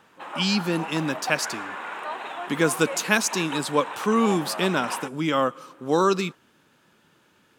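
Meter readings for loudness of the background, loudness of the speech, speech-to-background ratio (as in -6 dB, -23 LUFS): -34.0 LUFS, -24.5 LUFS, 9.5 dB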